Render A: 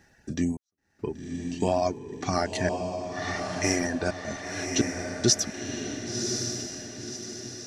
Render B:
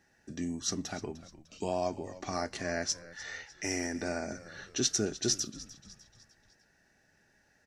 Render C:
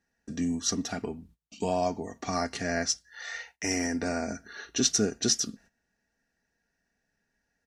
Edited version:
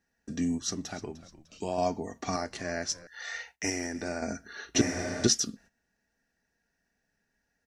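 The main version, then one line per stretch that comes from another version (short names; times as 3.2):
C
0.58–1.78 from B
2.36–3.07 from B
3.7–4.22 from B
4.75–5.27 from A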